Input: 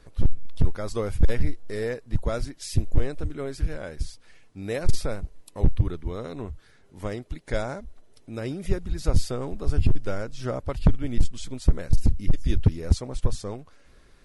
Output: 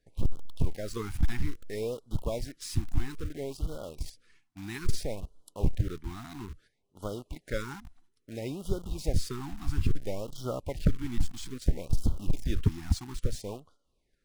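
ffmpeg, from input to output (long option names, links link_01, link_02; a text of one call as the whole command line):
ffmpeg -i in.wav -filter_complex "[0:a]agate=range=-11dB:threshold=-48dB:ratio=16:detection=peak,lowshelf=frequency=150:gain=-3.5,asplit=2[link_01][link_02];[link_02]acrusher=bits=5:mix=0:aa=0.000001,volume=-4dB[link_03];[link_01][link_03]amix=inputs=2:normalize=0,afftfilt=real='re*(1-between(b*sr/1024,470*pow(2100/470,0.5+0.5*sin(2*PI*0.6*pts/sr))/1.41,470*pow(2100/470,0.5+0.5*sin(2*PI*0.6*pts/sr))*1.41))':imag='im*(1-between(b*sr/1024,470*pow(2100/470,0.5+0.5*sin(2*PI*0.6*pts/sr))/1.41,470*pow(2100/470,0.5+0.5*sin(2*PI*0.6*pts/sr))*1.41))':win_size=1024:overlap=0.75,volume=-8dB" out.wav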